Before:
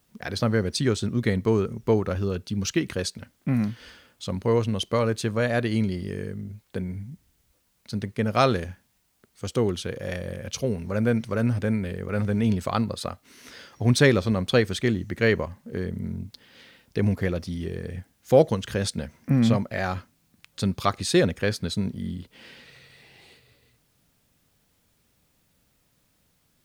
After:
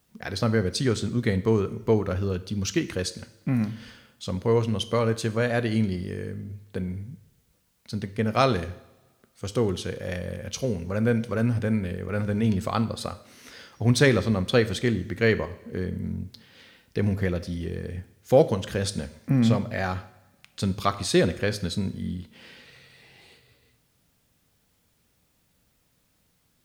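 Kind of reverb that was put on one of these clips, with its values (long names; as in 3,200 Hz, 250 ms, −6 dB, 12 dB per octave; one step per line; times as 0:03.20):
coupled-rooms reverb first 0.69 s, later 1.8 s, DRR 11.5 dB
level −1 dB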